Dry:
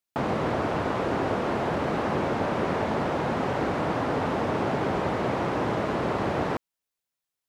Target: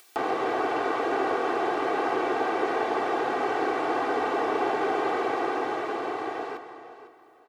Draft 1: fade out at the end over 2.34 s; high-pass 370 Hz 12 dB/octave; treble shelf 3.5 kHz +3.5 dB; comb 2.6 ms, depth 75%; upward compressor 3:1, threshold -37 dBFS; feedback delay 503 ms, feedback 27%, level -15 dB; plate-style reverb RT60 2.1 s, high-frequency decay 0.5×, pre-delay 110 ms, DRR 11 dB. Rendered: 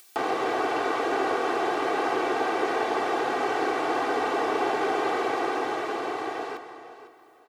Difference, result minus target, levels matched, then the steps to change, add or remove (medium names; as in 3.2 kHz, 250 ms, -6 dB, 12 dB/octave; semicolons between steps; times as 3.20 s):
8 kHz band +5.5 dB
change: treble shelf 3.5 kHz -4 dB